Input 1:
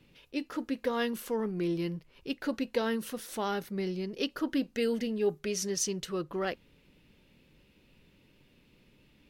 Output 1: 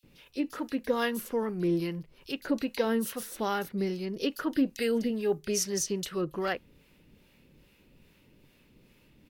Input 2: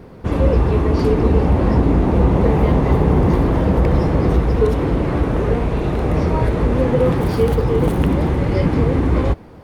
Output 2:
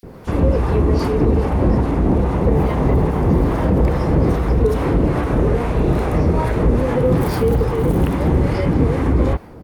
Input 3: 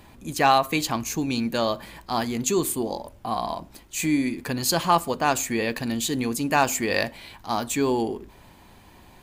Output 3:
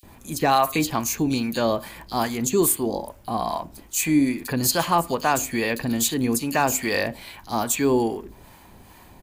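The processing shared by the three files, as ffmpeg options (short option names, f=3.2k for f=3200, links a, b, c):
-filter_complex "[0:a]highshelf=f=11k:g=7.5,alimiter=limit=-10dB:level=0:latency=1:release=74,acrossover=split=640[a][b];[a]aeval=exprs='val(0)*(1-0.5/2+0.5/2*cos(2*PI*2.4*n/s))':c=same[c];[b]aeval=exprs='val(0)*(1-0.5/2-0.5/2*cos(2*PI*2.4*n/s))':c=same[d];[c][d]amix=inputs=2:normalize=0,acrossover=split=3400[e][f];[e]adelay=30[g];[g][f]amix=inputs=2:normalize=0,volume=4.5dB"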